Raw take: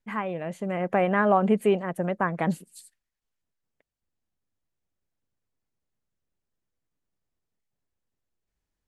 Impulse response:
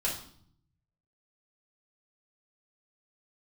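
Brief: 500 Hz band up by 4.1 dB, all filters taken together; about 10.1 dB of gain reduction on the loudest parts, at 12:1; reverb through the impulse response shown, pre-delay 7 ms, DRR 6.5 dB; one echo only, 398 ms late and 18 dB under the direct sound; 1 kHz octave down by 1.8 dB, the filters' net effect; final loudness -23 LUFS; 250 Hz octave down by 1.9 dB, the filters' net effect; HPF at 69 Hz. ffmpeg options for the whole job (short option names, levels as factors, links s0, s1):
-filter_complex "[0:a]highpass=69,equalizer=f=250:t=o:g=-4.5,equalizer=f=500:t=o:g=8,equalizer=f=1000:t=o:g=-6,acompressor=threshold=0.0631:ratio=12,aecho=1:1:398:0.126,asplit=2[s0][s1];[1:a]atrim=start_sample=2205,adelay=7[s2];[s1][s2]afir=irnorm=-1:irlink=0,volume=0.237[s3];[s0][s3]amix=inputs=2:normalize=0,volume=2"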